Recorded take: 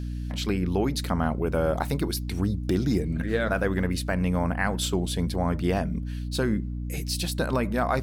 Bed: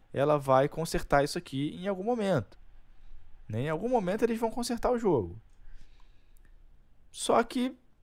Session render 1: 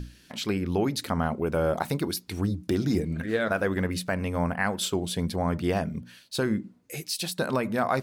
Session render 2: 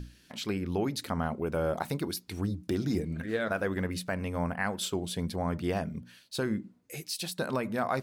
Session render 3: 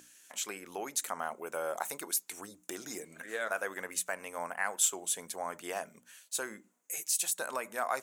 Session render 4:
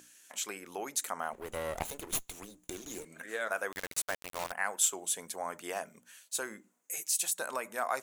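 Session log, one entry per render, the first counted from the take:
mains-hum notches 60/120/180/240/300 Hz
level −4.5 dB
high-pass filter 700 Hz 12 dB per octave; high shelf with overshoot 5,700 Hz +7 dB, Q 3
0:01.33–0:03.05: lower of the sound and its delayed copy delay 0.3 ms; 0:03.72–0:04.52: bit-depth reduction 6 bits, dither none

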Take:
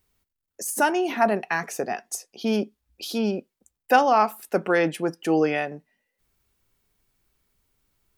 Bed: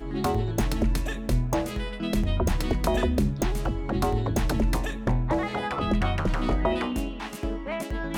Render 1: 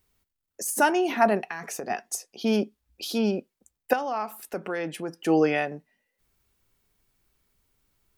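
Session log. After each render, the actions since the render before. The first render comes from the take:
0:01.46–0:01.90: downward compressor 10 to 1, threshold −29 dBFS
0:03.93–0:05.26: downward compressor 2 to 1, threshold −34 dBFS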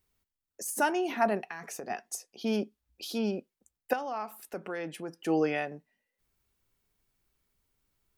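level −6 dB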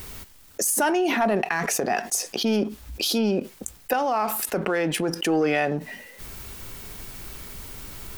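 leveller curve on the samples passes 1
envelope flattener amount 70%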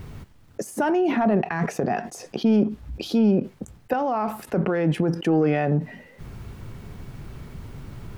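low-pass filter 1,200 Hz 6 dB per octave
parametric band 130 Hz +11 dB 1.5 octaves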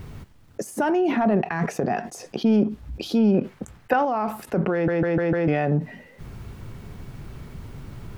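0:03.34–0:04.05: parametric band 1,600 Hz +8 dB 2.3 octaves
0:04.73: stutter in place 0.15 s, 5 plays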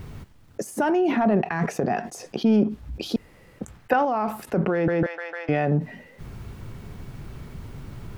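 0:03.16–0:03.59: fill with room tone
0:05.06–0:05.49: Bessel high-pass filter 980 Hz, order 4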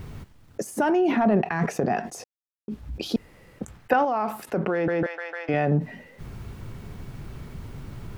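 0:02.24–0:02.68: silence
0:04.04–0:05.54: low-shelf EQ 200 Hz −8.5 dB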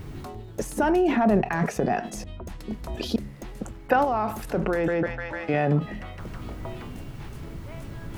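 mix in bed −13.5 dB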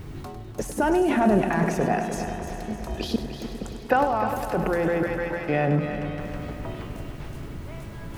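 echo machine with several playback heads 101 ms, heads first and third, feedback 70%, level −11 dB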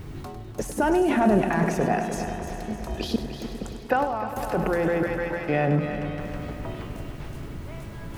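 0:03.68–0:04.36: fade out linear, to −7 dB

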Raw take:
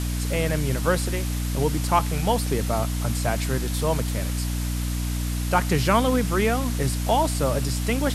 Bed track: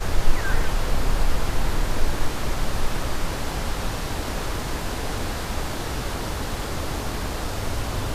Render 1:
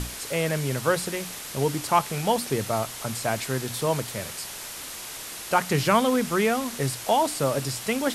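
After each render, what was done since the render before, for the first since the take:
mains-hum notches 60/120/180/240/300 Hz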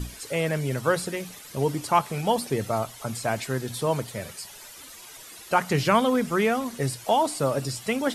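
broadband denoise 12 dB, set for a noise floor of −38 dBFS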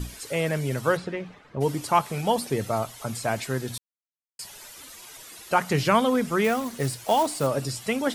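0:00.96–0:01.60: low-pass filter 3,300 Hz → 1,300 Hz
0:03.78–0:04.39: silence
0:06.44–0:07.47: floating-point word with a short mantissa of 2 bits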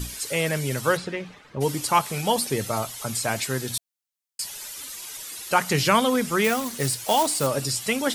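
high-shelf EQ 2,400 Hz +9 dB
notch filter 680 Hz, Q 21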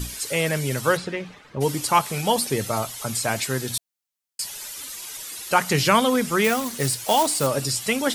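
level +1.5 dB

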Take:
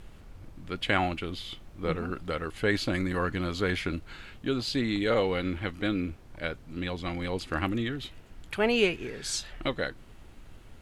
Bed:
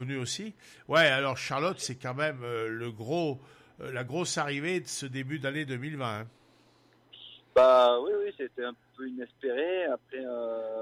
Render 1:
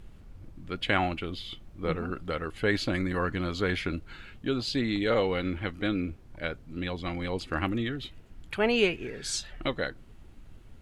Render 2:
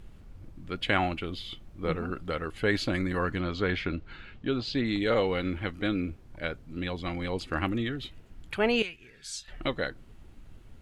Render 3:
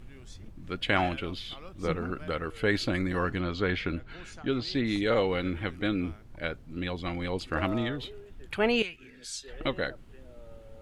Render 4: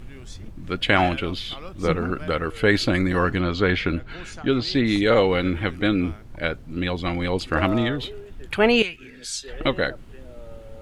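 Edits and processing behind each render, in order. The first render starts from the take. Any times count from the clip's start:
broadband denoise 6 dB, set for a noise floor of −50 dBFS
0:03.40–0:04.86: low-pass filter 4,500 Hz; 0:08.82–0:09.48: guitar amp tone stack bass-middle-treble 5-5-5
mix in bed −18.5 dB
level +8 dB; brickwall limiter −3 dBFS, peak gain reduction 1.5 dB

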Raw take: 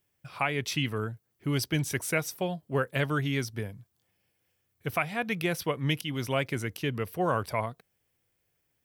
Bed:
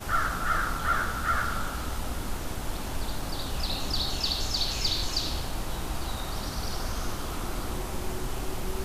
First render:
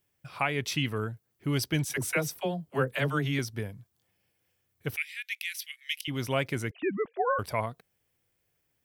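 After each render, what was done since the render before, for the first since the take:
0:01.85–0:03.39: all-pass dispersion lows, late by 53 ms, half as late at 460 Hz
0:04.96–0:06.08: Butterworth high-pass 1,900 Hz 48 dB per octave
0:06.71–0:07.39: three sine waves on the formant tracks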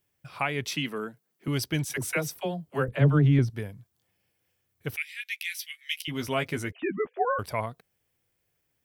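0:00.70–0:01.48: Butterworth high-pass 150 Hz 48 dB per octave
0:02.88–0:03.50: spectral tilt −4 dB per octave
0:05.17–0:07.25: double-tracking delay 12 ms −5 dB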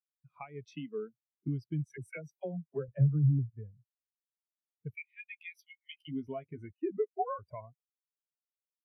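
downward compressor 6 to 1, threshold −32 dBFS, peak gain reduction 15 dB
every bin expanded away from the loudest bin 2.5 to 1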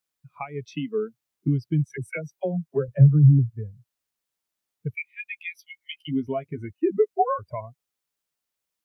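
level +11.5 dB

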